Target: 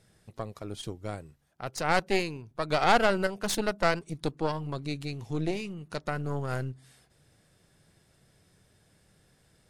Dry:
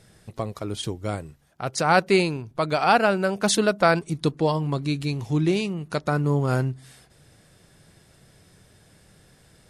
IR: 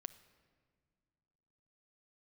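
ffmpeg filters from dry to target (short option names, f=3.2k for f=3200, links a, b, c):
-filter_complex "[0:a]aeval=exprs='0.596*(cos(1*acos(clip(val(0)/0.596,-1,1)))-cos(1*PI/2))+0.168*(cos(4*acos(clip(val(0)/0.596,-1,1)))-cos(4*PI/2))':c=same,asettb=1/sr,asplit=3[a][b][c];[a]atrim=end=2.704[d];[b]atrim=start=2.7:end=3.27,asetpts=PTS-STARTPTS,afade=t=in:d=0.004:c=qsin,afade=t=out:st=0.566:d=0.004:c=qsin,acontrast=43[e];[c]atrim=start=3.266[f];[d][e]acrossfade=d=0.004:c1=hsin:c2=qsin[g];[g][f]acrossfade=d=0.004:c1=qsin:c2=hsin,volume=-9dB"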